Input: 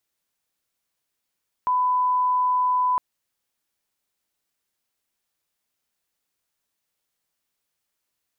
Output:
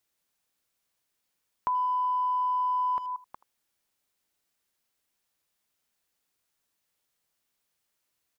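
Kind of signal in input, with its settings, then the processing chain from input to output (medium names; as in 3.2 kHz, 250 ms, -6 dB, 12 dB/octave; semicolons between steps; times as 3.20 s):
line-up tone -18 dBFS 1.31 s
chunks repeated in reverse 186 ms, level -12 dB; speakerphone echo 80 ms, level -19 dB; compression, threshold -26 dBFS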